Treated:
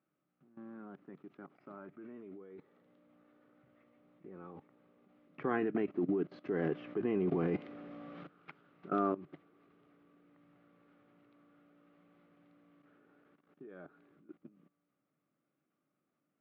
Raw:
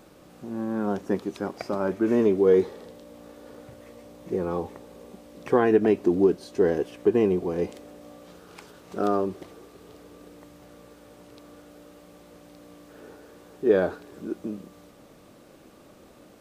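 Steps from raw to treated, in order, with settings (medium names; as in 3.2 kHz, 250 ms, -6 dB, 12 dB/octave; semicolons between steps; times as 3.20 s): Doppler pass-by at 7.48 s, 5 m/s, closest 2.3 m; level held to a coarse grid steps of 18 dB; cabinet simulation 140–3000 Hz, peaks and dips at 150 Hz +10 dB, 280 Hz +4 dB, 490 Hz -6 dB, 940 Hz -4 dB, 1.3 kHz +8 dB, 2.1 kHz +4 dB; trim +4.5 dB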